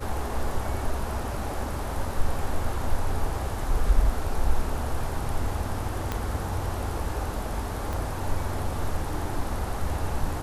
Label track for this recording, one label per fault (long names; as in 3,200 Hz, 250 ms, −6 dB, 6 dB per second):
6.120000	6.120000	click −13 dBFS
7.930000	7.930000	click